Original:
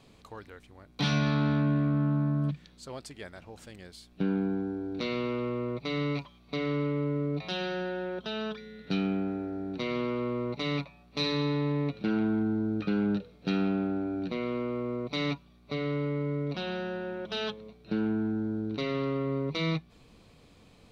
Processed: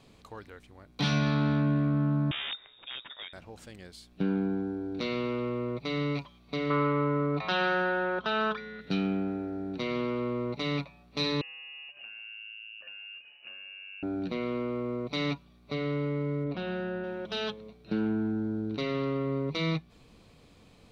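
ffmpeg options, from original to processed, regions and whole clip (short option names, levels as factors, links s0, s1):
-filter_complex "[0:a]asettb=1/sr,asplit=3[s0][s1][s2];[s0]atrim=end=2.314[s3];[s1]atrim=start=2.31:end=3.33,asetpts=PTS-STARTPTS,afade=t=in:d=0.004:c=qsin,afade=t=out:st=1.016:d=0.004:c=qsin,aemphasis=mode=production:type=75kf,aeval=exprs='(mod(31.6*val(0)+1,2)-1)/31.6':c=same,lowpass=f=3200:t=q:w=0.5098,lowpass=f=3200:t=q:w=0.6013,lowpass=f=3200:t=q:w=0.9,lowpass=f=3200:t=q:w=2.563,afreqshift=-3800[s4];[s2]atrim=start=3.326[s5];[s3][s4]acrossfade=d=0.004:c1=hsin:c2=qsin[s6];[s6][s5]acrossfade=d=0.004:c1=qsin:c2=hsin,asettb=1/sr,asplit=3[s7][s8][s9];[s7]atrim=end=6.704[s10];[s8]atrim=start=6.7:end=8.81,asetpts=PTS-STARTPTS,afade=t=in:d=0.004:c=qsin,afade=t=out:st=2.106:d=0.004:c=qsin,lowpass=5800,equalizer=f=1200:w=0.95:g=14.5[s11];[s9]atrim=start=8.806[s12];[s10][s11]acrossfade=d=0.004:c1=hsin:c2=qsin[s13];[s13][s12]acrossfade=d=0.004:c1=qsin:c2=hsin,asettb=1/sr,asplit=3[s14][s15][s16];[s14]atrim=end=11.414[s17];[s15]atrim=start=11.41:end=14.03,asetpts=PTS-STARTPTS,afade=t=in:d=0.004:c=qsin,afade=t=out:st=2.616:d=0.004:c=qsin,acompressor=threshold=0.00708:ratio=8:attack=3.2:release=140:knee=1:detection=peak,lowpass=f=2600:t=q:w=0.5098,lowpass=f=2600:t=q:w=0.6013,lowpass=f=2600:t=q:w=0.9,lowpass=f=2600:t=q:w=2.563,afreqshift=-3000[s18];[s16]atrim=start=14.026[s19];[s17][s18]acrossfade=d=0.004:c1=hsin:c2=qsin[s20];[s20][s19]acrossfade=d=0.004:c1=qsin:c2=hsin,asettb=1/sr,asplit=3[s21][s22][s23];[s21]atrim=end=16.444[s24];[s22]atrim=start=16.44:end=17.04,asetpts=PTS-STARTPTS,afade=t=in:d=0.004:c=qsin,afade=t=out:st=0.596:d=0.004:c=qsin,lowpass=f=3000:p=1,aemphasis=mode=reproduction:type=50fm,asplit=2[s25][s26];[s26]adelay=17,volume=0.266[s27];[s25][s27]amix=inputs=2:normalize=0,atrim=end_sample=26460[s28];[s23]atrim=start=17.036[s29];[s24][s28]acrossfade=d=0.004:c1=hsin:c2=qsin[s30];[s30][s29]acrossfade=d=0.004:c1=qsin:c2=hsin"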